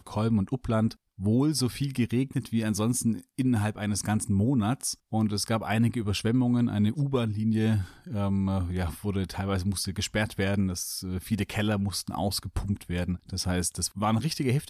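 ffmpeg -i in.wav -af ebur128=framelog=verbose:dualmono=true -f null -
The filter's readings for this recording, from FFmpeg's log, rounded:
Integrated loudness:
  I:         -25.1 LUFS
  Threshold: -35.1 LUFS
Loudness range:
  LRA:         2.9 LU
  Threshold: -45.1 LUFS
  LRA low:   -26.7 LUFS
  LRA high:  -23.8 LUFS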